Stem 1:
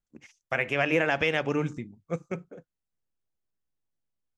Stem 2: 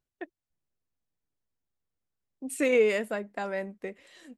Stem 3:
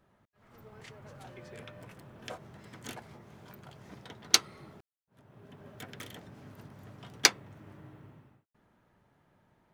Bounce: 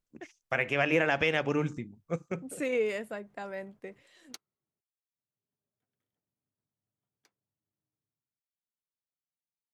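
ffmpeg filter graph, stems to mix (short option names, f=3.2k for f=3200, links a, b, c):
-filter_complex "[0:a]volume=-1.5dB[a];[1:a]volume=-6.5dB,asplit=2[b][c];[2:a]equalizer=f=3.9k:w=0.44:g=-6.5,volume=-17dB[d];[c]apad=whole_len=429504[e];[d][e]sidechaingate=range=-26dB:threshold=-54dB:ratio=16:detection=peak[f];[a][b][f]amix=inputs=3:normalize=0"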